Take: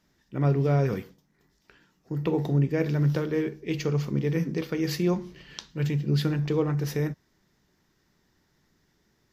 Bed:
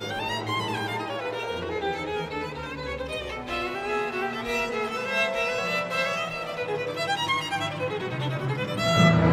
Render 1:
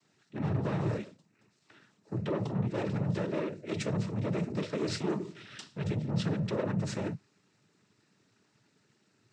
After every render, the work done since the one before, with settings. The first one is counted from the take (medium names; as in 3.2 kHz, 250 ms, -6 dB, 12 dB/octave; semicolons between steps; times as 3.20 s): saturation -28 dBFS, distortion -9 dB; noise-vocoded speech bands 12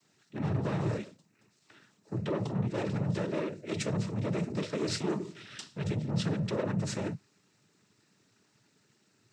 treble shelf 5.9 kHz +7.5 dB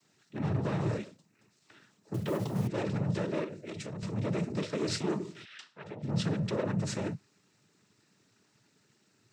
2.14–2.69 s: block-companded coder 5-bit; 3.44–4.03 s: compression 10:1, threshold -36 dBFS; 5.44–6.02 s: band-pass filter 2.9 kHz -> 700 Hz, Q 1.1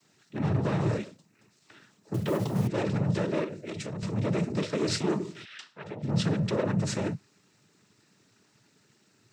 trim +4 dB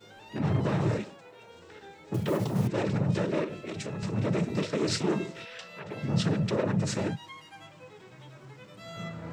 add bed -20.5 dB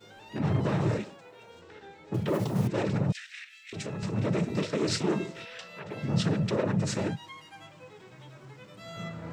1.61–2.34 s: treble shelf 7.3 kHz -10.5 dB; 3.12–3.73 s: steep high-pass 1.7 kHz 48 dB/octave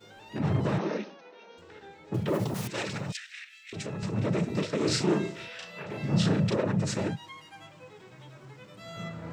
0.78–1.58 s: brick-wall FIR band-pass 170–6500 Hz; 2.54–3.17 s: tilt shelf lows -9 dB, about 1.2 kHz; 4.77–6.55 s: doubling 35 ms -3 dB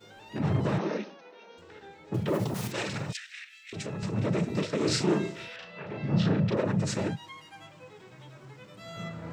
2.54–3.13 s: doubling 46 ms -9 dB; 5.56–6.57 s: distance through air 170 m